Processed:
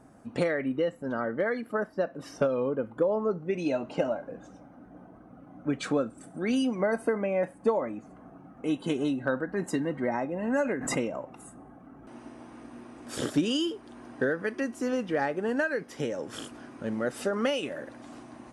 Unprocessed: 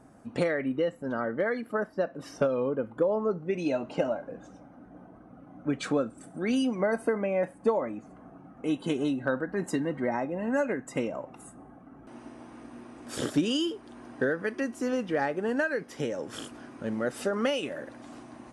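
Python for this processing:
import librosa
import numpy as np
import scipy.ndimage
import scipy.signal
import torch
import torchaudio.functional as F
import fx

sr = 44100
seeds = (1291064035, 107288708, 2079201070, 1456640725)

y = fx.pre_swell(x, sr, db_per_s=56.0, at=(10.43, 12.14))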